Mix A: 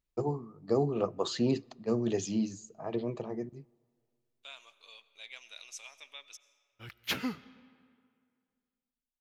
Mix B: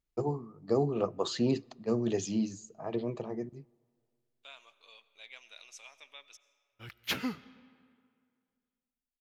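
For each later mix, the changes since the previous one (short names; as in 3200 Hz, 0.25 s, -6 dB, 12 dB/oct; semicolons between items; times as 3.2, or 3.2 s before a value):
second voice: add high shelf 3600 Hz -7.5 dB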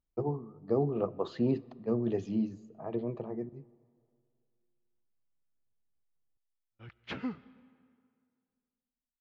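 first voice: send +8.5 dB; second voice: muted; master: add tape spacing loss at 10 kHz 36 dB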